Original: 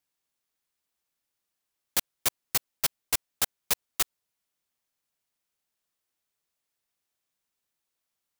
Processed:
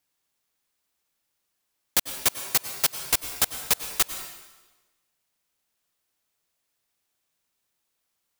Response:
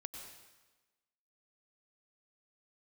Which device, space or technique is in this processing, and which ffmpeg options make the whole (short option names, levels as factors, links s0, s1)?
compressed reverb return: -filter_complex "[0:a]asplit=2[s0][s1];[1:a]atrim=start_sample=2205[s2];[s1][s2]afir=irnorm=-1:irlink=0,acompressor=threshold=0.0316:ratio=6,volume=1.5[s3];[s0][s3]amix=inputs=2:normalize=0,asettb=1/sr,asplit=3[s4][s5][s6];[s4]atrim=end=2.284[s7];[s5]atrim=start=2.28:end=3,asetpts=PTS-STARTPTS,afade=t=in:d=0.004:c=qsin,afade=t=out:st=0.716:d=0.004:c=qsin,highpass=f=140:p=1[s8];[s6]atrim=start=2.996[s9];[s7][s8]acrossfade=d=0.004:c1=hsin:c2=qsin[s10];[s10][s9]acrossfade=d=0.004:c1=qsin:c2=hsin"